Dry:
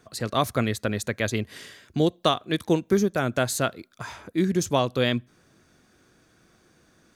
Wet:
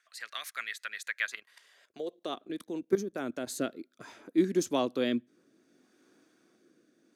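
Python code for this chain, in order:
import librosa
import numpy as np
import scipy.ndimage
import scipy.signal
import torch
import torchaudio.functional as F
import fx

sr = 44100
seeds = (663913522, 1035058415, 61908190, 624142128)

y = fx.filter_sweep_highpass(x, sr, from_hz=1800.0, to_hz=280.0, start_s=1.17, end_s=2.4, q=2.4)
y = fx.rotary_switch(y, sr, hz=8.0, then_hz=0.65, switch_at_s=2.46)
y = fx.level_steps(y, sr, step_db=14, at=(1.35, 3.47))
y = F.gain(torch.from_numpy(y), -6.5).numpy()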